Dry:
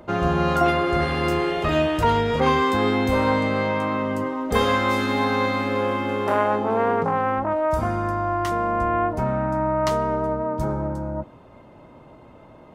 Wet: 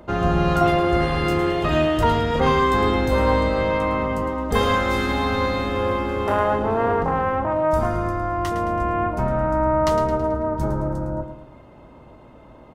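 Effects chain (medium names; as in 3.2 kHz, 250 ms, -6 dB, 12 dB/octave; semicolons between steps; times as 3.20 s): octave divider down 2 oct, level -3 dB; band-stop 2.3 kHz, Q 24; on a send: feedback delay 109 ms, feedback 46%, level -10 dB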